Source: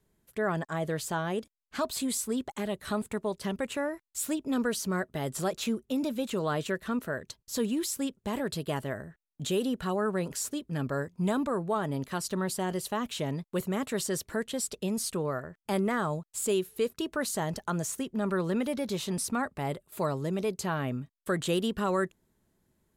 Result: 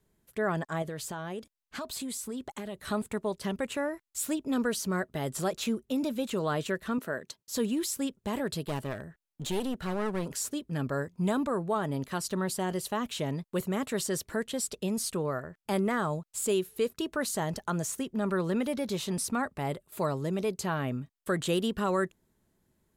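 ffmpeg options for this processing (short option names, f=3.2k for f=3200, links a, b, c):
-filter_complex "[0:a]asettb=1/sr,asplit=3[a][b][c];[a]atrim=end=0.824[d];[b]atrim=start=0.82:end=2.82,asetpts=PTS-STARTPTS,afade=t=in:d=0.004:c=qsin,afade=t=out:st=1.996:d=0.004:c=qsin,acompressor=threshold=-34dB:ratio=4:attack=3.2:release=140:knee=1:detection=peak[e];[c]atrim=start=2.816[f];[d][e]acrossfade=d=0.004:c1=hsin:c2=qsin[g];[g][f]acrossfade=d=0.004:c1=qsin:c2=hsin,asettb=1/sr,asplit=3[h][i][j];[h]atrim=end=6.984[k];[i]atrim=start=6.98:end=7.54,asetpts=PTS-STARTPTS,afade=t=in:d=0.004:c=qsin,afade=t=out:st=0.556:d=0.004:c=qsin,highpass=170[l];[j]atrim=start=7.536[m];[k][l]acrossfade=d=0.004:c1=hsin:c2=qsin[n];[n][m]acrossfade=d=0.004:c1=qsin:c2=hsin,asettb=1/sr,asplit=3[o][p][q];[o]atrim=end=8.644[r];[p]atrim=start=8.64:end=10.26,asetpts=PTS-STARTPTS,afade=t=in:d=0.004:c=qsin,afade=t=out:st=1.616:d=0.004:c=qsin,aeval=exprs='clip(val(0),-1,0.015)':c=same[s];[q]atrim=start=10.256[t];[r][s]acrossfade=d=0.004:c1=hsin:c2=qsin[u];[u][t]acrossfade=d=0.004:c1=qsin:c2=hsin"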